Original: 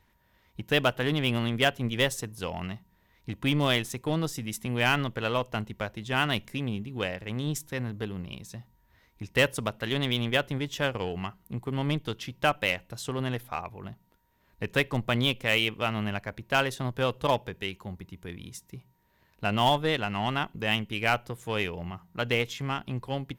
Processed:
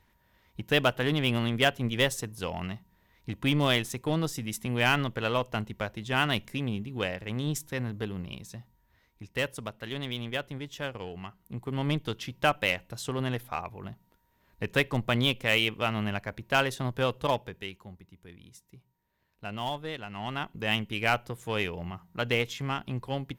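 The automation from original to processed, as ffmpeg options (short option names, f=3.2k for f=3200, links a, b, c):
-af "volume=16.5dB,afade=t=out:st=8.29:d=1.02:silence=0.446684,afade=t=in:st=11.24:d=0.69:silence=0.446684,afade=t=out:st=16.99:d=1.04:silence=0.316228,afade=t=in:st=20.08:d=0.69:silence=0.334965"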